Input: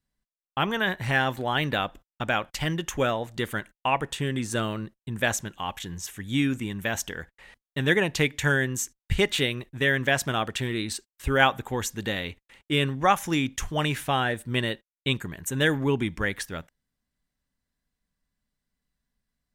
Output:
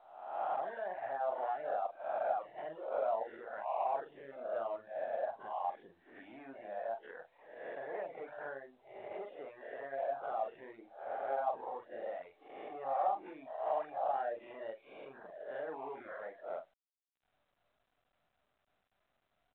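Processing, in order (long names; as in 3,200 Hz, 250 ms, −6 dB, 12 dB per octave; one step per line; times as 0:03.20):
peak hold with a rise ahead of every peak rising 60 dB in 0.88 s
soft clipping −18.5 dBFS, distortion −11 dB
speech leveller within 5 dB 2 s
brickwall limiter −23 dBFS, peak gain reduction 7 dB
parametric band 760 Hz +4.5 dB 0.38 octaves
de-essing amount 95%
high-frequency loss of the air 310 metres
double-tracking delay 44 ms −4 dB
reverb reduction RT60 0.73 s
four-pole ladder band-pass 710 Hz, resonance 65%
level +2.5 dB
mu-law 64 kbit/s 8,000 Hz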